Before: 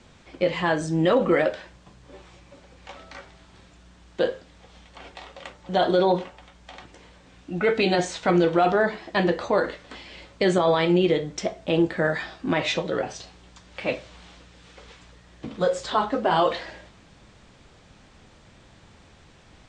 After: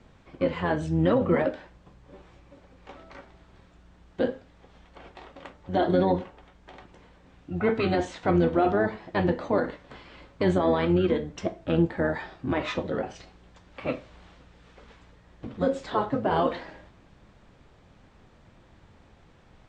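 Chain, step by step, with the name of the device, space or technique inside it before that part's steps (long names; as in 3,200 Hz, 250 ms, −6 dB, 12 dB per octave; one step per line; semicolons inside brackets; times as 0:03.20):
octave pedal (pitch-shifted copies added −12 semitones −5 dB)
high-shelf EQ 2,800 Hz −10.5 dB
level −3.5 dB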